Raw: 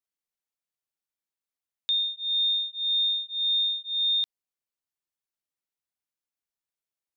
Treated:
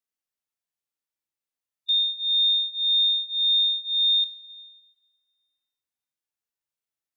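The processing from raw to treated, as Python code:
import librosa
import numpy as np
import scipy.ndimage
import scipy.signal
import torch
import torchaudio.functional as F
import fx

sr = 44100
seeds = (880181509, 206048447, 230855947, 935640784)

y = fx.rev_double_slope(x, sr, seeds[0], early_s=0.26, late_s=1.7, knee_db=-17, drr_db=8.5)
y = fx.hpss(y, sr, part='percussive', gain_db=-15)
y = y * 10.0 ** (3.0 / 20.0)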